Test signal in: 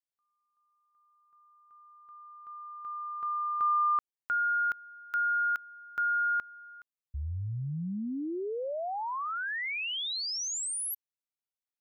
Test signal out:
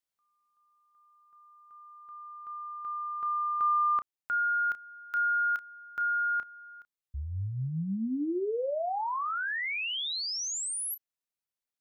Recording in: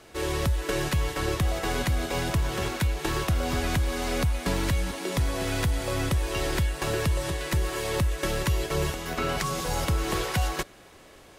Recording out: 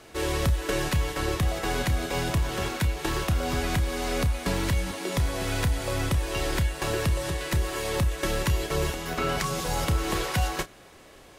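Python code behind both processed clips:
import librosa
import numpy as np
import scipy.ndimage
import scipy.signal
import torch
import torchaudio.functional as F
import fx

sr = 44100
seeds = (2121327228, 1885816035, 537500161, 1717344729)

y = fx.rider(x, sr, range_db=4, speed_s=2.0)
y = fx.doubler(y, sr, ms=31.0, db=-12.0)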